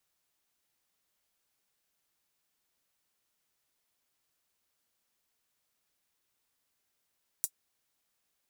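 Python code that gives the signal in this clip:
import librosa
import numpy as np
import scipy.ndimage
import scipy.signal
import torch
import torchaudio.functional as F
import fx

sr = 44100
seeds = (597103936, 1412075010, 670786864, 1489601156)

y = fx.drum_hat(sr, length_s=0.24, from_hz=7600.0, decay_s=0.07)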